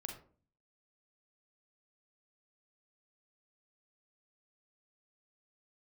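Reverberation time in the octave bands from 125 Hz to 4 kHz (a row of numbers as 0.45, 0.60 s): 0.70, 0.65, 0.50, 0.40, 0.30, 0.25 s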